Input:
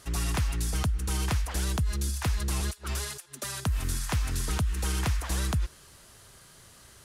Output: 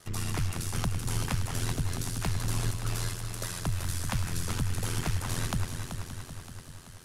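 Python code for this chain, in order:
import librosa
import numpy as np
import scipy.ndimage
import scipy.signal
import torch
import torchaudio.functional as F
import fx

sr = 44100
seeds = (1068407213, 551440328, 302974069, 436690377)

y = fx.echo_heads(x, sr, ms=191, heads='first and second', feedback_pct=66, wet_db=-10.0)
y = y * np.sin(2.0 * np.pi * 43.0 * np.arange(len(y)) / sr)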